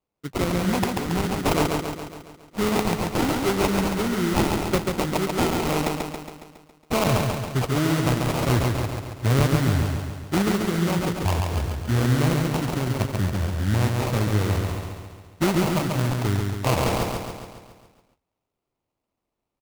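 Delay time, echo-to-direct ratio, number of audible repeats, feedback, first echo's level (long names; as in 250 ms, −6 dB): 138 ms, −2.0 dB, 7, 57%, −3.5 dB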